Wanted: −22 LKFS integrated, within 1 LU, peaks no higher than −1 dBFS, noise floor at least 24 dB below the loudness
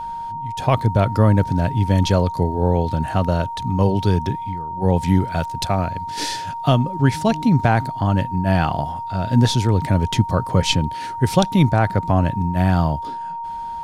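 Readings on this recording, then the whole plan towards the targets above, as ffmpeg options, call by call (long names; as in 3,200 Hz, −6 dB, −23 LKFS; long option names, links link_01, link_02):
interfering tone 930 Hz; level of the tone −26 dBFS; integrated loudness −19.5 LKFS; sample peak −3.5 dBFS; target loudness −22.0 LKFS
→ -af "bandreject=frequency=930:width=30"
-af "volume=-2.5dB"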